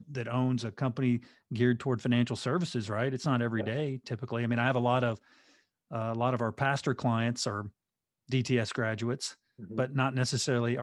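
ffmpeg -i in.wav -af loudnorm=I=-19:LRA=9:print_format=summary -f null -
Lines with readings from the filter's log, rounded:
Input Integrated:    -31.1 LUFS
Input True Peak:     -12.5 dBTP
Input LRA:             2.2 LU
Input Threshold:     -41.5 LUFS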